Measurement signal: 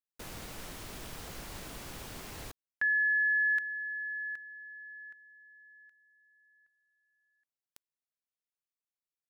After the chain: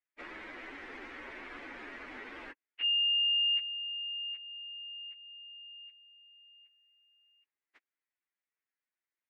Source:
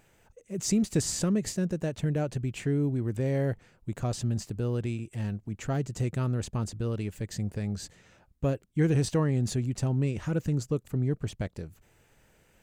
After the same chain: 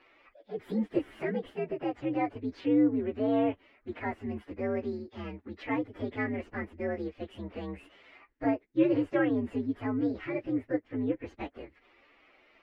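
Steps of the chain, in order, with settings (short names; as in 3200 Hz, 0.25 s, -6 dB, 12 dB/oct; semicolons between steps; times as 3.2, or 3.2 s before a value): inharmonic rescaling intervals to 126%; synth low-pass 2000 Hz, resonance Q 3.1; resonant low shelf 210 Hz -10.5 dB, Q 3; mismatched tape noise reduction encoder only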